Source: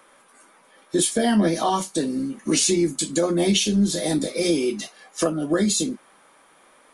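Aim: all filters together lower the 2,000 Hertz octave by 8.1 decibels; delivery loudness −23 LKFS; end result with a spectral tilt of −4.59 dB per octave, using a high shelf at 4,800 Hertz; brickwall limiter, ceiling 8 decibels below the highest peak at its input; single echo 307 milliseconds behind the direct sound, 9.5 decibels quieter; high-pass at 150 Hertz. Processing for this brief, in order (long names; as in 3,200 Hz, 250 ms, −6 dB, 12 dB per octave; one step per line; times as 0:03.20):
high-pass filter 150 Hz
parametric band 2,000 Hz −9 dB
high-shelf EQ 4,800 Hz −7.5 dB
brickwall limiter −19 dBFS
single-tap delay 307 ms −9.5 dB
level +4.5 dB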